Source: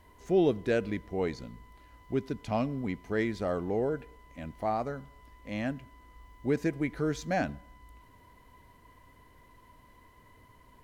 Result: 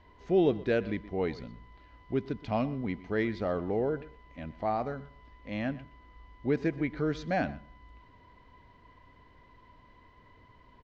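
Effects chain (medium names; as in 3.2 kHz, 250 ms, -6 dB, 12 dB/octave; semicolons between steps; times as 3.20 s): low-pass 4.7 kHz 24 dB/octave; echo from a far wall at 21 m, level -18 dB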